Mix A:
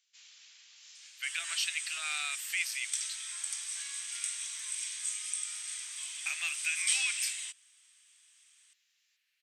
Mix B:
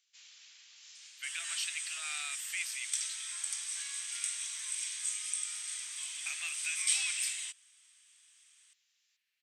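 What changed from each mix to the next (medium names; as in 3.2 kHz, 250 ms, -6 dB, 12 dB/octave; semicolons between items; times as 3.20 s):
speech -5.0 dB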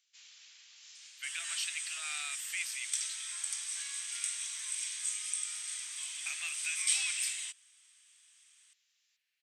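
no change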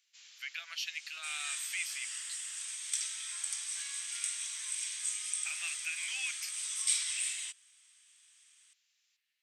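speech: entry -0.80 s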